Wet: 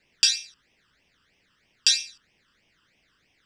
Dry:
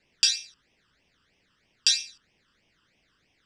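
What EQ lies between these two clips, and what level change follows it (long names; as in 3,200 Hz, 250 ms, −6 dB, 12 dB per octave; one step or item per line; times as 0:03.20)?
parametric band 2,000 Hz +3 dB 1.5 octaves
high-shelf EQ 9,400 Hz +6 dB
0.0 dB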